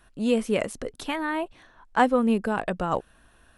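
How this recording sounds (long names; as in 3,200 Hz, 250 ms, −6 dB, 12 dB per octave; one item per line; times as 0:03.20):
background noise floor −59 dBFS
spectral slope −4.0 dB per octave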